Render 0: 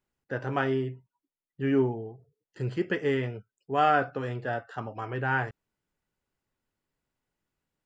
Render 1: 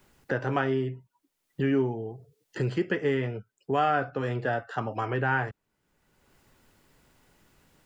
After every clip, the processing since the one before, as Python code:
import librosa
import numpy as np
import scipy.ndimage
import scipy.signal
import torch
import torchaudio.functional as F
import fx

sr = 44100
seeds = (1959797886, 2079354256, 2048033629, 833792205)

y = fx.band_squash(x, sr, depth_pct=70)
y = F.gain(torch.from_numpy(y), 1.0).numpy()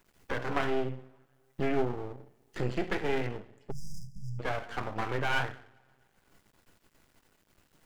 y = fx.rev_double_slope(x, sr, seeds[0], early_s=0.49, late_s=2.2, knee_db=-25, drr_db=5.5)
y = np.maximum(y, 0.0)
y = fx.spec_erase(y, sr, start_s=3.71, length_s=0.69, low_hz=230.0, high_hz=4800.0)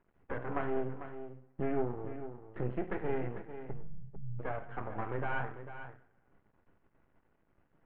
y = scipy.ndimage.gaussian_filter1d(x, 4.4, mode='constant')
y = y + 10.0 ** (-11.0 / 20.0) * np.pad(y, (int(447 * sr / 1000.0), 0))[:len(y)]
y = F.gain(torch.from_numpy(y), -3.5).numpy()